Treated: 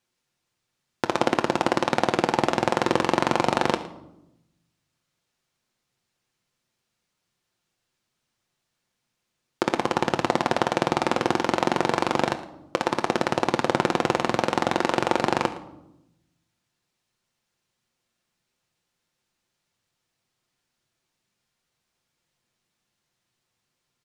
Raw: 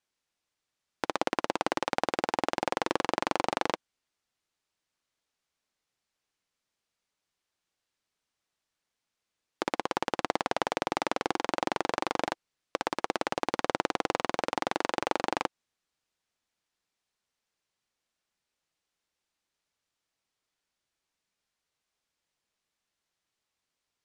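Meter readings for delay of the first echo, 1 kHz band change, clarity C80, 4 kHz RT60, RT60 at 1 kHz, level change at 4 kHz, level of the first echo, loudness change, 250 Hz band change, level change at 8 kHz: 113 ms, +6.5 dB, 14.0 dB, 0.55 s, 0.75 s, +6.0 dB, -18.0 dB, +7.5 dB, +10.0 dB, +6.0 dB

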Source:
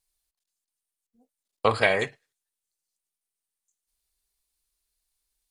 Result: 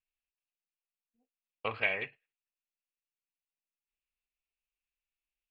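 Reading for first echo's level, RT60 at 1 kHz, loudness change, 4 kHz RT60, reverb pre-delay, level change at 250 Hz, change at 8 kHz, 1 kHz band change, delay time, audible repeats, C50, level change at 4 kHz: no echo, no reverb, -9.5 dB, no reverb, no reverb, -15.0 dB, under -25 dB, -14.0 dB, no echo, no echo, no reverb, -10.0 dB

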